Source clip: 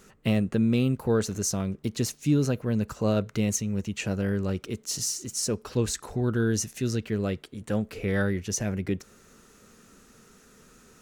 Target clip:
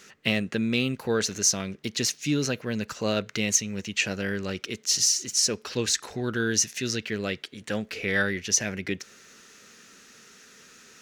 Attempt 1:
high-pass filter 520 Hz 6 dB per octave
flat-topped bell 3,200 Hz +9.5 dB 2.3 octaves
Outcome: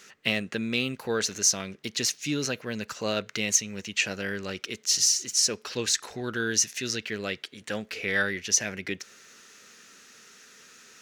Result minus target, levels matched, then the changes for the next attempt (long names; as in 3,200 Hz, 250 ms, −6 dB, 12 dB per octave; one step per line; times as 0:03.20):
250 Hz band −3.5 dB
change: high-pass filter 240 Hz 6 dB per octave